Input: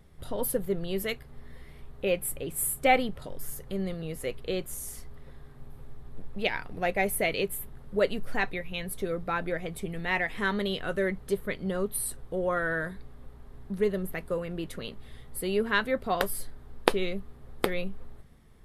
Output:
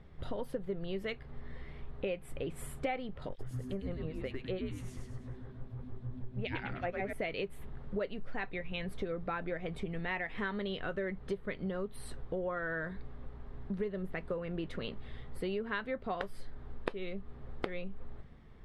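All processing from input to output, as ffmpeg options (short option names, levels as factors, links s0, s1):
-filter_complex "[0:a]asettb=1/sr,asplit=3[s0][s1][s2];[s0]atrim=end=3.294[s3];[s1]atrim=start=3.29:end=7.13,asetpts=PTS-STARTPTS,afade=t=in:d=0.004:c=qsin,afade=t=out:st=3.836:d=0.004:c=qsin,acrossover=split=2300[s4][s5];[s4]aeval=exprs='val(0)*(1-1/2+1/2*cos(2*PI*6.4*n/s))':c=same[s6];[s5]aeval=exprs='val(0)*(1-1/2-1/2*cos(2*PI*6.4*n/s))':c=same[s7];[s6][s7]amix=inputs=2:normalize=0,asplit=6[s8][s9][s10][s11][s12][s13];[s9]adelay=102,afreqshift=-130,volume=0.708[s14];[s10]adelay=204,afreqshift=-260,volume=0.299[s15];[s11]adelay=306,afreqshift=-390,volume=0.124[s16];[s12]adelay=408,afreqshift=-520,volume=0.0525[s17];[s13]adelay=510,afreqshift=-650,volume=0.0221[s18];[s8][s14][s15][s16][s17][s18]amix=inputs=6:normalize=0,atrim=end_sample=169344[s19];[s2]atrim=start=7.126[s20];[s3][s19]acrossfade=d=0.004:c1=hsin:c2=qsin[s21];[s21][s20]acrossfade=d=0.004:c1=qsin:c2=hsin,lowpass=3300,acompressor=threshold=0.0178:ratio=6,volume=1.19"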